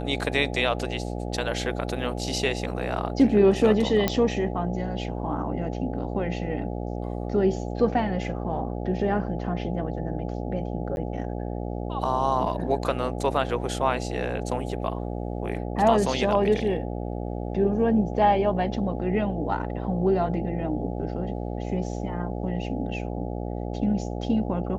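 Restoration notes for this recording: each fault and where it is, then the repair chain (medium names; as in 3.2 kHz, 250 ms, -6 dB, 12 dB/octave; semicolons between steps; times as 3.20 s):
buzz 60 Hz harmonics 14 -31 dBFS
4.08 s: pop -8 dBFS
10.96–10.97 s: dropout 11 ms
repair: de-click; de-hum 60 Hz, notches 14; interpolate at 10.96 s, 11 ms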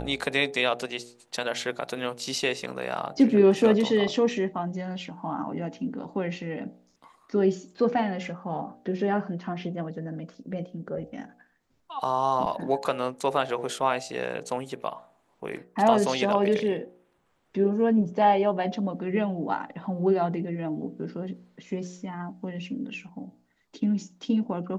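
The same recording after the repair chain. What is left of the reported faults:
nothing left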